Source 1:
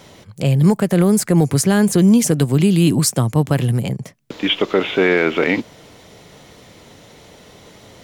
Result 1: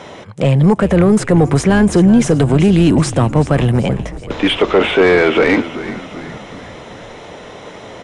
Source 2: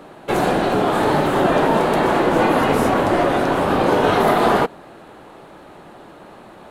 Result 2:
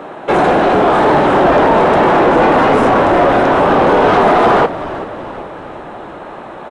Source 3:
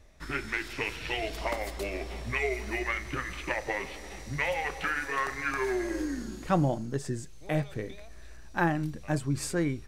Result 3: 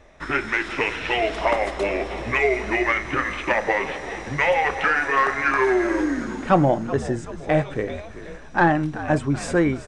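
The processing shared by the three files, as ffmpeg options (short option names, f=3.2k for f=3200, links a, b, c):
-filter_complex "[0:a]bandreject=f=4.5k:w=8.3,acontrast=88,asplit=2[a][b];[b]highpass=f=720:p=1,volume=15dB,asoftclip=type=tanh:threshold=-2dB[c];[a][c]amix=inputs=2:normalize=0,lowpass=f=1.1k:p=1,volume=-6dB,asplit=6[d][e][f][g][h][i];[e]adelay=381,afreqshift=-66,volume=-14.5dB[j];[f]adelay=762,afreqshift=-132,volume=-20dB[k];[g]adelay=1143,afreqshift=-198,volume=-25.5dB[l];[h]adelay=1524,afreqshift=-264,volume=-31dB[m];[i]adelay=1905,afreqshift=-330,volume=-36.6dB[n];[d][j][k][l][m][n]amix=inputs=6:normalize=0,aresample=22050,aresample=44100"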